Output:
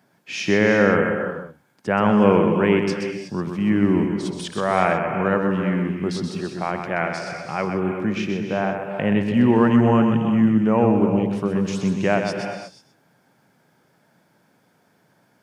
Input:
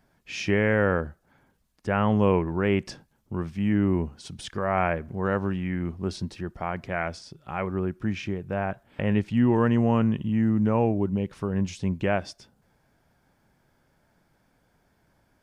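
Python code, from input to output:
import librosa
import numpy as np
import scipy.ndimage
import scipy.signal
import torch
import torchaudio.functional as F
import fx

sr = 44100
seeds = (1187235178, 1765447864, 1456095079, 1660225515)

y = scipy.signal.sosfilt(scipy.signal.butter(4, 130.0, 'highpass', fs=sr, output='sos'), x)
y = y + 10.0 ** (-6.5 / 20.0) * np.pad(y, (int(127 * sr / 1000.0), 0))[:len(y)]
y = fx.rev_gated(y, sr, seeds[0], gate_ms=390, shape='rising', drr_db=7.0)
y = y * 10.0 ** (5.0 / 20.0)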